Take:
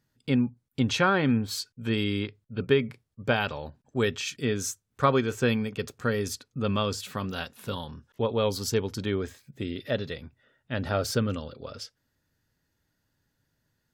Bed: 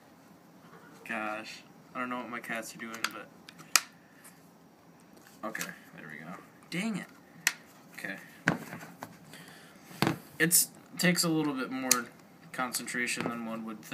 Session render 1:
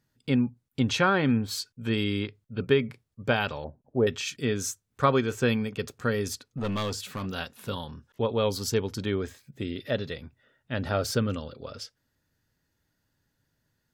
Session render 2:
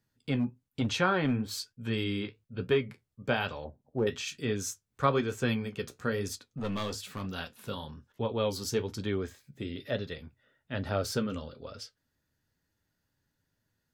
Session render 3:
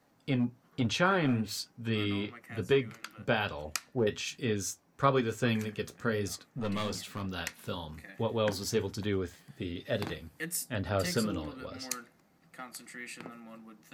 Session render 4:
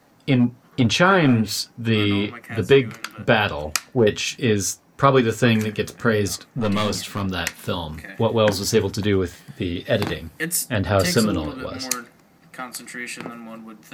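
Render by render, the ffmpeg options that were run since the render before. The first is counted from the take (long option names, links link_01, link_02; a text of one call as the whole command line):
ffmpeg -i in.wav -filter_complex "[0:a]asettb=1/sr,asplit=3[link_01][link_02][link_03];[link_01]atrim=end=3.644[link_04];[link_02]atrim=start=3.64:end=4.07,asetpts=PTS-STARTPTS,afade=type=in:duration=0.004:curve=qsin,afade=type=out:start_time=0.426:duration=0.004:curve=qsin,lowpass=frequency=650:width_type=q:width=1.7[link_05];[link_03]atrim=start=4.066[link_06];[link_04][link_05]acrossfade=duration=0.004:curve1=hsin:curve2=qsin[link_07];[link_07][link_06]acrossfade=duration=0.004:curve1=qsin:curve2=hsin,asettb=1/sr,asplit=3[link_08][link_09][link_10];[link_08]atrim=end=6.324[link_11];[link_09]atrim=start=6.32:end=7.26,asetpts=PTS-STARTPTS,afade=type=in:duration=0.004:curve=qsin,afade=type=out:start_time=0.936:duration=0.004:curve=qsin,aeval=exprs='clip(val(0),-1,0.0422)':channel_layout=same[link_12];[link_10]atrim=start=7.256[link_13];[link_11][link_12]acrossfade=duration=0.004:curve1=hsin:curve2=qsin[link_14];[link_14][link_13]acrossfade=duration=0.004:curve1=qsin:curve2=hsin" out.wav
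ffmpeg -i in.wav -filter_complex "[0:a]flanger=delay=9.1:depth=6.4:regen=-53:speed=1.1:shape=triangular,acrossover=split=450|4900[link_01][link_02][link_03];[link_01]volume=24dB,asoftclip=hard,volume=-24dB[link_04];[link_04][link_02][link_03]amix=inputs=3:normalize=0" out.wav
ffmpeg -i in.wav -i bed.wav -filter_complex "[1:a]volume=-11.5dB[link_01];[0:a][link_01]amix=inputs=2:normalize=0" out.wav
ffmpeg -i in.wav -af "volume=12dB,alimiter=limit=-2dB:level=0:latency=1" out.wav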